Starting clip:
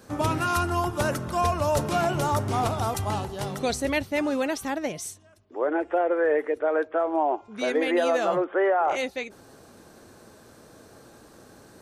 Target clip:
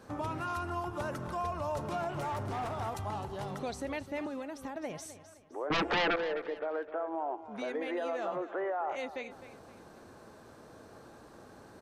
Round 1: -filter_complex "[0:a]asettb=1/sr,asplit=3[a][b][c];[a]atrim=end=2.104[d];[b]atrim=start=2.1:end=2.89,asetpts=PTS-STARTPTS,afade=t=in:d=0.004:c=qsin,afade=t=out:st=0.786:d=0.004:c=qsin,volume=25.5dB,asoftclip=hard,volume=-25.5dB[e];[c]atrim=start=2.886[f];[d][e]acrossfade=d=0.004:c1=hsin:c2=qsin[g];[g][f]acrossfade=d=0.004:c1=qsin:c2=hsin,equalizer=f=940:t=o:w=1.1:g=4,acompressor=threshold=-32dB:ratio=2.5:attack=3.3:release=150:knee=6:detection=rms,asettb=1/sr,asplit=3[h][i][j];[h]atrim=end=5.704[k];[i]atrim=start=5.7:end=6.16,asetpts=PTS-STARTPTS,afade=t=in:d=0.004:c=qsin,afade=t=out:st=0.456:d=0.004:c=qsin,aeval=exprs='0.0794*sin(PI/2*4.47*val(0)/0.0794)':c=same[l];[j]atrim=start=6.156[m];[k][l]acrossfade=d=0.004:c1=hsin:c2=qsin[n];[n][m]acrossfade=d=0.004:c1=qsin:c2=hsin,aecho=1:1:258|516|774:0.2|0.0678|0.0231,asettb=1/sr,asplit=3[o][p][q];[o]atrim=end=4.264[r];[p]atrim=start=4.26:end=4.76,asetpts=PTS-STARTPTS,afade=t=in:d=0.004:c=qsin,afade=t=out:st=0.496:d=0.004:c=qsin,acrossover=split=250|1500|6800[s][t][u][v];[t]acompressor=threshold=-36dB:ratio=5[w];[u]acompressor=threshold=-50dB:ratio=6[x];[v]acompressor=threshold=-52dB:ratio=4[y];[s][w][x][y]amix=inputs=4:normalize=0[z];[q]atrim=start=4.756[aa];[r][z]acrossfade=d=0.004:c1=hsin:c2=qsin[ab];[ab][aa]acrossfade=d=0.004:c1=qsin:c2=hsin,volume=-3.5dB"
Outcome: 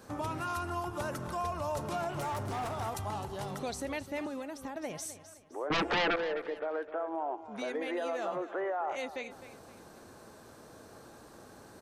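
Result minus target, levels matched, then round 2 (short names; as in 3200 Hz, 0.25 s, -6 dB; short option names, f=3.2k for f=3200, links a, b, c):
8000 Hz band +5.5 dB
-filter_complex "[0:a]asettb=1/sr,asplit=3[a][b][c];[a]atrim=end=2.104[d];[b]atrim=start=2.1:end=2.89,asetpts=PTS-STARTPTS,afade=t=in:d=0.004:c=qsin,afade=t=out:st=0.786:d=0.004:c=qsin,volume=25.5dB,asoftclip=hard,volume=-25.5dB[e];[c]atrim=start=2.886[f];[d][e]acrossfade=d=0.004:c1=hsin:c2=qsin[g];[g][f]acrossfade=d=0.004:c1=qsin:c2=hsin,equalizer=f=940:t=o:w=1.1:g=4,acompressor=threshold=-32dB:ratio=2.5:attack=3.3:release=150:knee=6:detection=rms,highshelf=f=5.3k:g=-9,asettb=1/sr,asplit=3[h][i][j];[h]atrim=end=5.704[k];[i]atrim=start=5.7:end=6.16,asetpts=PTS-STARTPTS,afade=t=in:d=0.004:c=qsin,afade=t=out:st=0.456:d=0.004:c=qsin,aeval=exprs='0.0794*sin(PI/2*4.47*val(0)/0.0794)':c=same[l];[j]atrim=start=6.156[m];[k][l]acrossfade=d=0.004:c1=hsin:c2=qsin[n];[n][m]acrossfade=d=0.004:c1=qsin:c2=hsin,aecho=1:1:258|516|774:0.2|0.0678|0.0231,asettb=1/sr,asplit=3[o][p][q];[o]atrim=end=4.264[r];[p]atrim=start=4.26:end=4.76,asetpts=PTS-STARTPTS,afade=t=in:d=0.004:c=qsin,afade=t=out:st=0.496:d=0.004:c=qsin,acrossover=split=250|1500|6800[s][t][u][v];[t]acompressor=threshold=-36dB:ratio=5[w];[u]acompressor=threshold=-50dB:ratio=6[x];[v]acompressor=threshold=-52dB:ratio=4[y];[s][w][x][y]amix=inputs=4:normalize=0[z];[q]atrim=start=4.756[aa];[r][z]acrossfade=d=0.004:c1=hsin:c2=qsin[ab];[ab][aa]acrossfade=d=0.004:c1=qsin:c2=hsin,volume=-3.5dB"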